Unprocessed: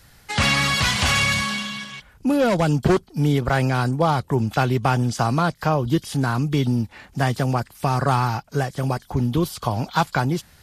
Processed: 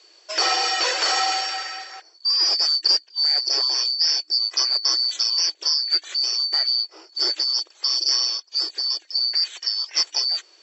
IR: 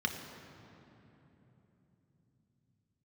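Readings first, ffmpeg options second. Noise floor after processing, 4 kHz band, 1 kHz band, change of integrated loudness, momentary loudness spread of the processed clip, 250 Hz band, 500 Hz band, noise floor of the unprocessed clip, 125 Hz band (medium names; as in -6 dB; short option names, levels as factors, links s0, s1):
-55 dBFS, +11.0 dB, -7.0 dB, +2.0 dB, 6 LU, under -25 dB, -14.0 dB, -53 dBFS, under -40 dB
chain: -af "afftfilt=real='real(if(lt(b,272),68*(eq(floor(b/68),0)*1+eq(floor(b/68),1)*2+eq(floor(b/68),2)*3+eq(floor(b/68),3)*0)+mod(b,68),b),0)':imag='imag(if(lt(b,272),68*(eq(floor(b/68),0)*1+eq(floor(b/68),1)*2+eq(floor(b/68),2)*3+eq(floor(b/68),3)*0)+mod(b,68),b),0)':win_size=2048:overlap=0.75,afftfilt=real='re*between(b*sr/4096,310,7900)':imag='im*between(b*sr/4096,310,7900)':win_size=4096:overlap=0.75,volume=0.841"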